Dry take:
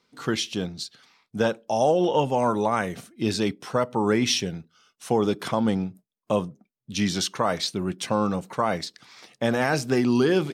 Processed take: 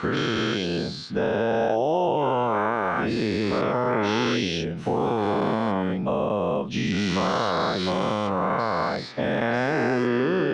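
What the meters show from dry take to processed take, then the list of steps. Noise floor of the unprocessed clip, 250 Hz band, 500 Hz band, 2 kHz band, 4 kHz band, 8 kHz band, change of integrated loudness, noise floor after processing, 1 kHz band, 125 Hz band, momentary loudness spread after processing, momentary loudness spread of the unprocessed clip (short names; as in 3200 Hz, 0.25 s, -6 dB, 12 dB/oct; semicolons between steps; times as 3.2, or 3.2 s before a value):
-78 dBFS, +0.5 dB, +1.5 dB, +3.5 dB, -1.0 dB, -9.0 dB, +0.5 dB, -33 dBFS, +3.0 dB, +1.5 dB, 3 LU, 12 LU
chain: spectral dilation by 0.48 s; LPF 2700 Hz 12 dB/oct; compressor 2.5:1, threshold -23 dBFS, peak gain reduction 9 dB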